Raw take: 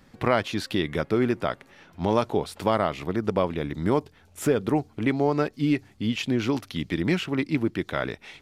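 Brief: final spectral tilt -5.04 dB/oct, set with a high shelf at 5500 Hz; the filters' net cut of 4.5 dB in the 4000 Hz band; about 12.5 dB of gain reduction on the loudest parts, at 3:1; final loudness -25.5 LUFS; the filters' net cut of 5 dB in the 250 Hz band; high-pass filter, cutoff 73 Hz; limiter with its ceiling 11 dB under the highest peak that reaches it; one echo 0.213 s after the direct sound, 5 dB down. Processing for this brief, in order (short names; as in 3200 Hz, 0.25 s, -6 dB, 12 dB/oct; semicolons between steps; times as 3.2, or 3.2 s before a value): HPF 73 Hz; bell 250 Hz -6.5 dB; bell 4000 Hz -4.5 dB; high shelf 5500 Hz -4.5 dB; compressor 3:1, threshold -36 dBFS; limiter -29 dBFS; echo 0.213 s -5 dB; gain +15 dB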